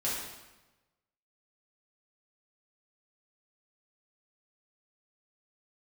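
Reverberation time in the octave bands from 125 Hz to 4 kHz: 1.3 s, 1.2 s, 1.1 s, 1.1 s, 1.0 s, 0.90 s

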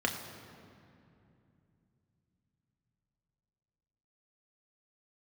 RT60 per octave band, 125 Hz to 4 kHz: 5.1 s, 4.1 s, 2.9 s, 2.5 s, 2.2 s, 1.6 s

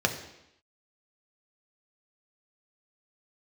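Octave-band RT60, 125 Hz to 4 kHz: 0.75 s, 0.85 s, 0.80 s, 0.85 s, 0.85 s, 0.85 s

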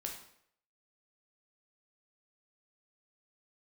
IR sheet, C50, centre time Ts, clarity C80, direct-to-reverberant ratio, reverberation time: 6.0 dB, 27 ms, 9.5 dB, 1.0 dB, 0.70 s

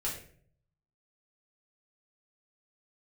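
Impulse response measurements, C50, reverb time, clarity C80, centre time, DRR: 6.0 dB, 0.55 s, 9.5 dB, 32 ms, -5.5 dB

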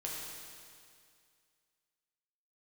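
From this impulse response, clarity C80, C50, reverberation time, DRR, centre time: 1.0 dB, -1.0 dB, 2.2 s, -4.0 dB, 120 ms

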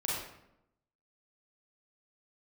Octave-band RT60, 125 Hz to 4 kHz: 0.95 s, 1.0 s, 0.90 s, 0.80 s, 0.65 s, 0.55 s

